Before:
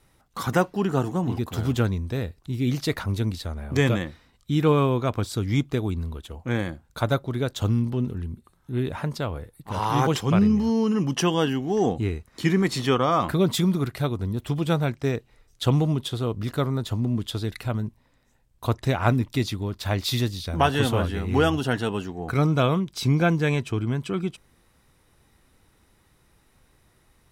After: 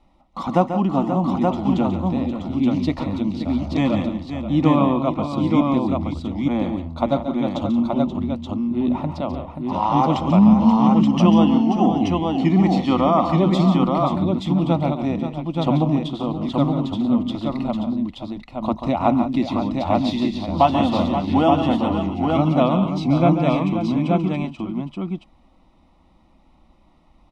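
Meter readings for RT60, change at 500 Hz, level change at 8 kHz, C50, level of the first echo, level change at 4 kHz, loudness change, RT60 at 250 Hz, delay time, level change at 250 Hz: no reverb, +3.5 dB, under -10 dB, no reverb, -9.5 dB, -1.0 dB, +5.0 dB, no reverb, 139 ms, +8.0 dB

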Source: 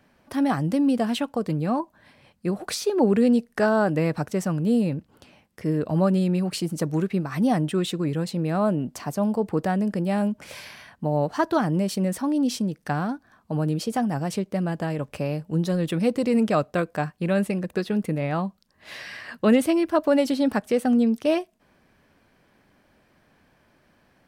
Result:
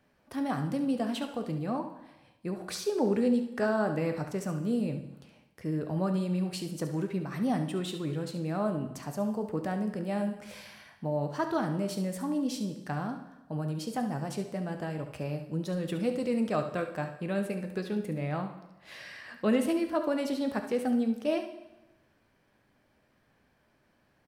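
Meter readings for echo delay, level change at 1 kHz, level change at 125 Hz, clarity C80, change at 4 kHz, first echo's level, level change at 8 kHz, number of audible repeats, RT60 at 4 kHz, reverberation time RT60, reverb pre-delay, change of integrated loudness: 70 ms, -7.5 dB, -8.0 dB, 12.0 dB, -7.5 dB, -11.0 dB, -7.5 dB, 1, 0.95 s, 1.0 s, 5 ms, -7.5 dB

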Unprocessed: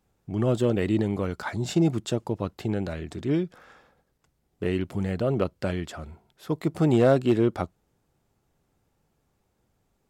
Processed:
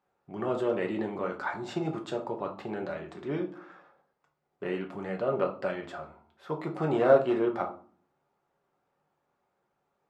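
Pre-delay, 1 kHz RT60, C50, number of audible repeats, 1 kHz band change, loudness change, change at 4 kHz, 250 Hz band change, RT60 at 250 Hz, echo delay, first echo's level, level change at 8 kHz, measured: 5 ms, 0.40 s, 11.5 dB, no echo, +1.5 dB, -4.5 dB, -8.0 dB, -8.0 dB, 0.70 s, no echo, no echo, under -10 dB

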